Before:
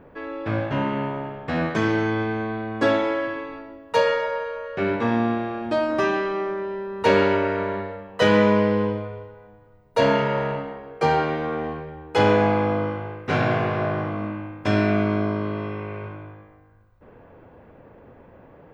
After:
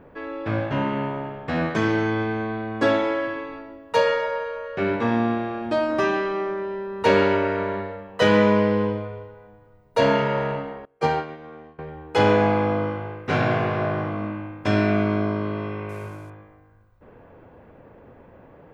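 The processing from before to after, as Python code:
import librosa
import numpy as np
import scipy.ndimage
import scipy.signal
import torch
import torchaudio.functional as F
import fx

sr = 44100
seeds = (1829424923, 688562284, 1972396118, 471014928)

y = fx.upward_expand(x, sr, threshold_db=-33.0, expansion=2.5, at=(10.85, 11.79))
y = fx.cvsd(y, sr, bps=64000, at=(15.89, 16.3))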